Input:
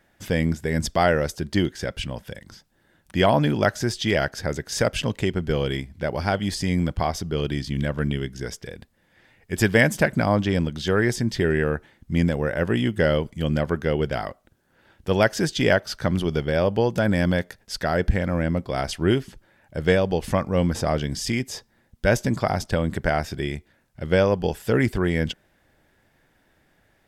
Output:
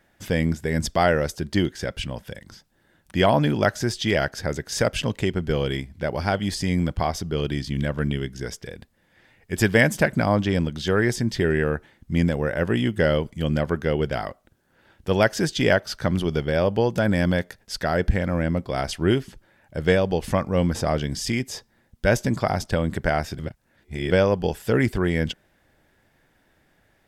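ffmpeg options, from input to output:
-filter_complex "[0:a]asplit=3[s0][s1][s2];[s0]atrim=end=23.392[s3];[s1]atrim=start=23.388:end=24.112,asetpts=PTS-STARTPTS,areverse[s4];[s2]atrim=start=24.108[s5];[s3][s4]acrossfade=d=0.004:c1=hsin:c2=hsin[s6];[s6][s5]acrossfade=d=0.004:c1=hsin:c2=hsin"

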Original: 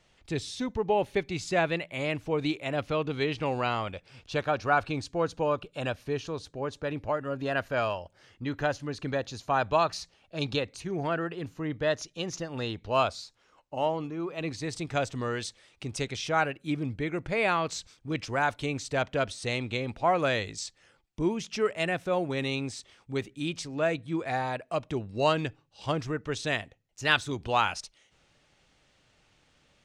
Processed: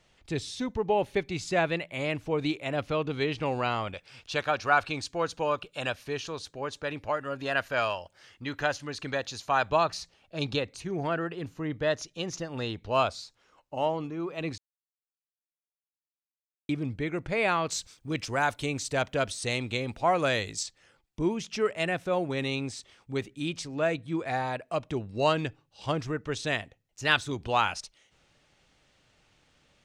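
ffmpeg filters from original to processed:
-filter_complex "[0:a]asettb=1/sr,asplit=3[s0][s1][s2];[s0]atrim=end=3.944[s3];[s1]atrim=start=3.94:end=9.7,asetpts=PTS-STARTPTS,afade=t=in:d=0.004:c=qsin,afade=t=out:st=5.756:d=0.004:c=qsin,tiltshelf=f=750:g=-5[s4];[s2]atrim=start=9.696[s5];[s3][s4]acrossfade=d=0.004:c1=hsin:c2=qsin[s6];[s6][s5]acrossfade=d=0.004:c1=qsin:c2=hsin,asettb=1/sr,asplit=3[s7][s8][s9];[s7]atrim=end=17.704[s10];[s8]atrim=start=17.7:end=20.63,asetpts=PTS-STARTPTS,afade=t=in:d=0.004:c=qsin,afade=t=out:st=2.926:d=0.004:c=qsin,highshelf=f=7500:g=11.5[s11];[s9]atrim=start=20.626[s12];[s10][s11]acrossfade=d=0.004:c1=hsin:c2=qsin[s13];[s13][s12]acrossfade=d=0.004:c1=qsin:c2=hsin,asplit=3[s14][s15][s16];[s14]atrim=end=14.58,asetpts=PTS-STARTPTS,afade=t=out:st=14.576:d=0.004:c=hsin[s17];[s15]atrim=start=14.58:end=16.69,asetpts=PTS-STARTPTS,volume=0[s18];[s16]atrim=start=16.69,asetpts=PTS-STARTPTS,afade=t=in:d=0.004:c=hsin[s19];[s17][s18][s19]concat=n=3:v=0:a=1"

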